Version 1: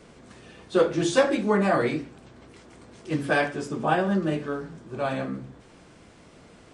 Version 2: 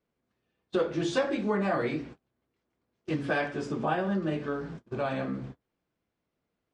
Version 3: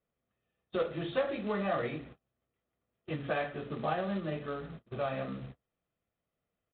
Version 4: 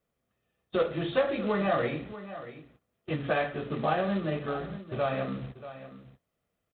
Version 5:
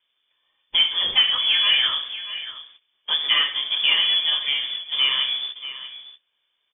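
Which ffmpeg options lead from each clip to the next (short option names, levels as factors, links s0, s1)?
-af "lowpass=5200,agate=range=0.0178:threshold=0.00891:ratio=16:detection=peak,acompressor=threshold=0.0158:ratio=2,volume=1.5"
-af "aecho=1:1:1.6:0.4,aresample=8000,acrusher=bits=4:mode=log:mix=0:aa=0.000001,aresample=44100,volume=0.562"
-af "aecho=1:1:635:0.2,volume=1.78"
-af "asoftclip=type=tanh:threshold=0.133,lowpass=f=3100:t=q:w=0.5098,lowpass=f=3100:t=q:w=0.6013,lowpass=f=3100:t=q:w=0.9,lowpass=f=3100:t=q:w=2.563,afreqshift=-3600,volume=2.82"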